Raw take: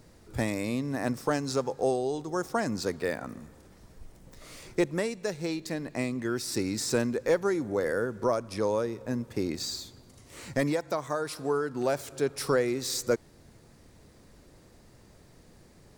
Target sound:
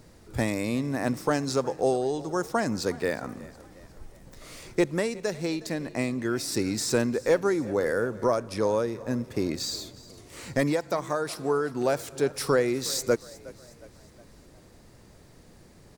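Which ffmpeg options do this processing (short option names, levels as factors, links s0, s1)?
-filter_complex "[0:a]asplit=5[s0][s1][s2][s3][s4];[s1]adelay=363,afreqshift=36,volume=0.1[s5];[s2]adelay=726,afreqshift=72,volume=0.0468[s6];[s3]adelay=1089,afreqshift=108,volume=0.0221[s7];[s4]adelay=1452,afreqshift=144,volume=0.0104[s8];[s0][s5][s6][s7][s8]amix=inputs=5:normalize=0,volume=1.33"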